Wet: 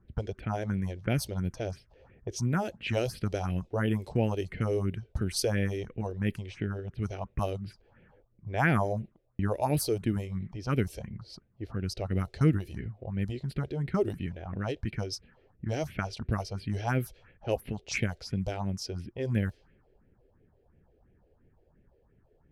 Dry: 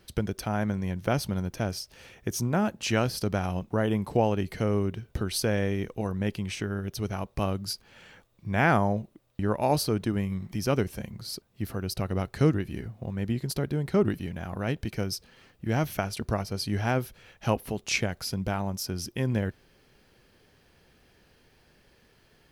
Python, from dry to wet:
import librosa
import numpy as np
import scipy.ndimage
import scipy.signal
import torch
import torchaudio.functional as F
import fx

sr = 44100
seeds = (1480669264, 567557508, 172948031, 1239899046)

y = fx.phaser_stages(x, sr, stages=4, low_hz=170.0, high_hz=1100.0, hz=2.9, feedback_pct=30)
y = fx.env_lowpass(y, sr, base_hz=750.0, full_db=-25.0)